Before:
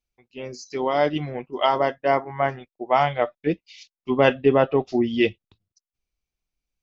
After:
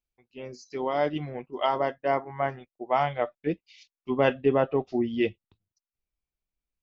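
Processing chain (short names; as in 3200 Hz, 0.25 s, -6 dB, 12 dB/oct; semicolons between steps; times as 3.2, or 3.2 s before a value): high shelf 3900 Hz -6.5 dB, from 4.6 s -12 dB; gain -5 dB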